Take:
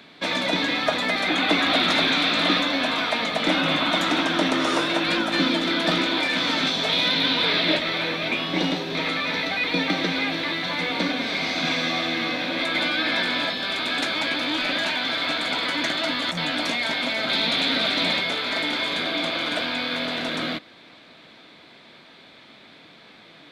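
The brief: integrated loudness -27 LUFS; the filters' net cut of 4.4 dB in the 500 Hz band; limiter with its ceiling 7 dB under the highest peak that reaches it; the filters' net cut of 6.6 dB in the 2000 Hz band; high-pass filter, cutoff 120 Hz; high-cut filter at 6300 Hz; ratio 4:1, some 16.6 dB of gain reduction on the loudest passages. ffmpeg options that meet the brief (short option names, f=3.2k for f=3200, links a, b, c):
-af "highpass=120,lowpass=6.3k,equalizer=f=500:t=o:g=-5.5,equalizer=f=2k:t=o:g=-8,acompressor=threshold=-41dB:ratio=4,volume=15dB,alimiter=limit=-19dB:level=0:latency=1"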